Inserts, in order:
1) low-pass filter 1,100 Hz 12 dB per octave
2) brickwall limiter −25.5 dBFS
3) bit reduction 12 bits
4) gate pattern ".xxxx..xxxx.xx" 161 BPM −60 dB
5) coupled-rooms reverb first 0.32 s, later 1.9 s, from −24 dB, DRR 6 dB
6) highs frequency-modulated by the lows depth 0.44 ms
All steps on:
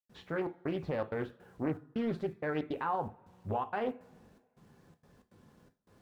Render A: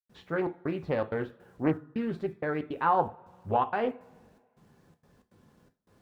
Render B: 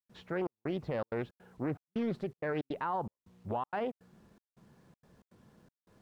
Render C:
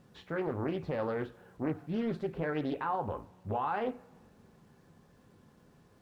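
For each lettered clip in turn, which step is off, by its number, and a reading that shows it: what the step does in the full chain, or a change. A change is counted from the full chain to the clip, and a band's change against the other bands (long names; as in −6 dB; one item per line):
2, average gain reduction 2.0 dB
5, change in crest factor −2.5 dB
4, change in integrated loudness +1.0 LU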